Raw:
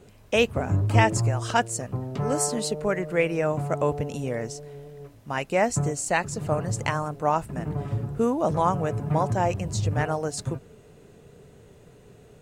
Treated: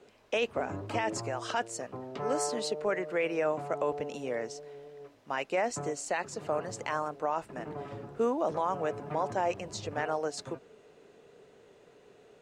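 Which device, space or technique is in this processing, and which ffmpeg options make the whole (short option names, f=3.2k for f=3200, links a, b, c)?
DJ mixer with the lows and highs turned down: -filter_complex "[0:a]acrossover=split=270 6400:gain=0.112 1 0.2[a][b][c];[a][b][c]amix=inputs=3:normalize=0,alimiter=limit=-17.5dB:level=0:latency=1:release=20,volume=-2.5dB"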